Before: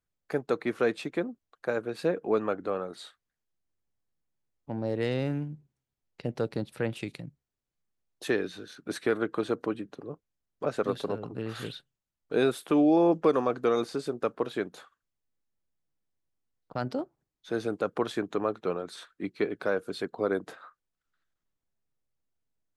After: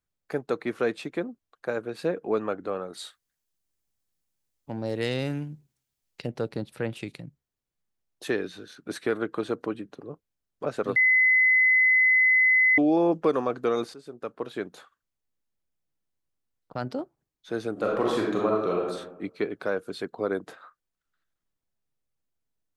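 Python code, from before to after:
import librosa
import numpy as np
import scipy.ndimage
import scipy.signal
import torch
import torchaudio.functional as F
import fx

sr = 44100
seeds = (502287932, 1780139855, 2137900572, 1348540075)

y = fx.high_shelf(x, sr, hz=fx.line((2.93, 4100.0), (6.25, 2200.0)), db=11.0, at=(2.93, 6.25), fade=0.02)
y = fx.reverb_throw(y, sr, start_s=17.72, length_s=1.15, rt60_s=0.91, drr_db=-3.5)
y = fx.edit(y, sr, fx.bleep(start_s=10.96, length_s=1.82, hz=2030.0, db=-16.5),
    fx.fade_in_from(start_s=13.94, length_s=0.79, floor_db=-15.5), tone=tone)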